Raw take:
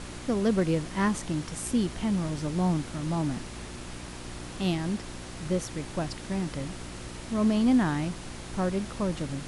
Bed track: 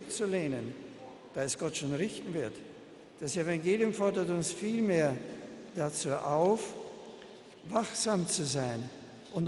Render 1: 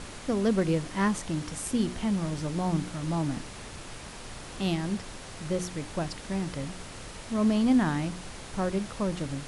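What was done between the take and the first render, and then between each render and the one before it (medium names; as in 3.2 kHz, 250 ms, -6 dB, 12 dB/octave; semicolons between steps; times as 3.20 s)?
de-hum 60 Hz, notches 6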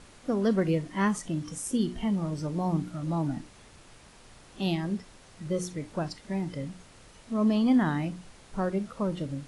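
noise print and reduce 11 dB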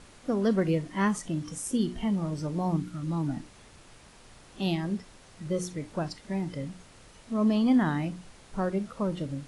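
2.76–3.28 s: peaking EQ 660 Hz -10 dB 0.71 oct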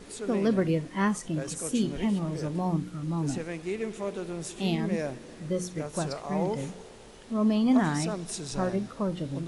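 add bed track -4 dB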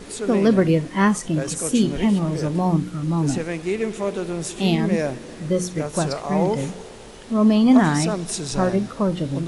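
trim +8.5 dB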